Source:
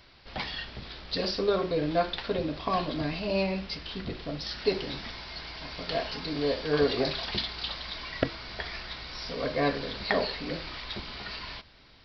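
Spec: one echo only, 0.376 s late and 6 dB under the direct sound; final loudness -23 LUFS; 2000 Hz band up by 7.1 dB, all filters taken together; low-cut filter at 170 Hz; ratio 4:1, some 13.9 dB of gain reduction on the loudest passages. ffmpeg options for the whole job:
-af "highpass=170,equalizer=f=2k:t=o:g=8.5,acompressor=threshold=-36dB:ratio=4,aecho=1:1:376:0.501,volume=13.5dB"

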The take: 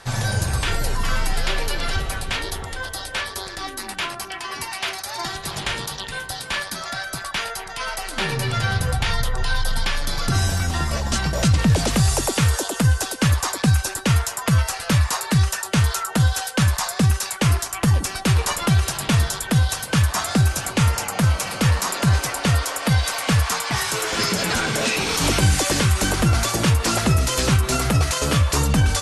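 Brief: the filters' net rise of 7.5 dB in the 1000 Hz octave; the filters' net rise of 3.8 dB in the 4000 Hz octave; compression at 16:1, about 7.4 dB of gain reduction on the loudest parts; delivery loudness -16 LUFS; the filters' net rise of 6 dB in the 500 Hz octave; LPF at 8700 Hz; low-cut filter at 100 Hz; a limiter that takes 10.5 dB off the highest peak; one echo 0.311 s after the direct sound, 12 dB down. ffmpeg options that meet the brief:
-af "highpass=100,lowpass=8.7k,equalizer=f=500:t=o:g=5,equalizer=f=1k:t=o:g=8,equalizer=f=4k:t=o:g=4.5,acompressor=threshold=-20dB:ratio=16,alimiter=limit=-17dB:level=0:latency=1,aecho=1:1:311:0.251,volume=10dB"

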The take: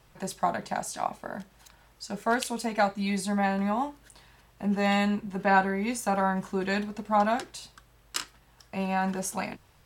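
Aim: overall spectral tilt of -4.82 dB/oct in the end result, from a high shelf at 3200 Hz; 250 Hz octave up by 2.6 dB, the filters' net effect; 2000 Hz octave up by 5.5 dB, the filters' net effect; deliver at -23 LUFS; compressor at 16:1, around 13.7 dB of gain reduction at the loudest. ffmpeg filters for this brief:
-af "equalizer=f=250:t=o:g=3.5,equalizer=f=2k:t=o:g=8.5,highshelf=f=3.2k:g=-4,acompressor=threshold=-28dB:ratio=16,volume=11dB"

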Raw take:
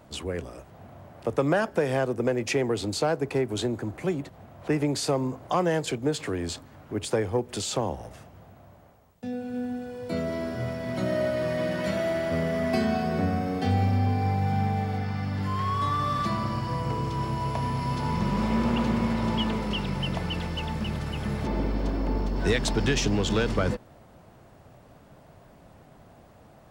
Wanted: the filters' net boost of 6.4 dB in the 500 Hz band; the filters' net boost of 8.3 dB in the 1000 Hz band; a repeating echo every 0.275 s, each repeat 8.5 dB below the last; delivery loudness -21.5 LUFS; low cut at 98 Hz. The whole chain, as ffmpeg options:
-af "highpass=98,equalizer=f=500:t=o:g=5.5,equalizer=f=1k:t=o:g=8.5,aecho=1:1:275|550|825|1100:0.376|0.143|0.0543|0.0206,volume=1.5dB"

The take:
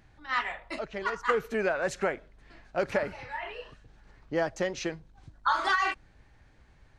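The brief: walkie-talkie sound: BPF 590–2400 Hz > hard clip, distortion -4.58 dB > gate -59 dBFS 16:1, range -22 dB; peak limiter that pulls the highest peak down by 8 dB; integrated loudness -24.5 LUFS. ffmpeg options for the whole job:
-af "alimiter=limit=-20.5dB:level=0:latency=1,highpass=590,lowpass=2.4k,asoftclip=type=hard:threshold=-39dB,agate=range=-22dB:threshold=-59dB:ratio=16,volume=18.5dB"

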